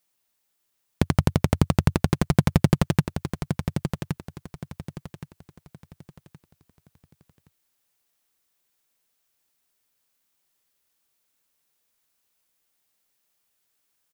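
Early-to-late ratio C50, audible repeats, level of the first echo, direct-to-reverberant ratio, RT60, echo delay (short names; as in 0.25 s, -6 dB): none, 3, -8.0 dB, none, none, 1.12 s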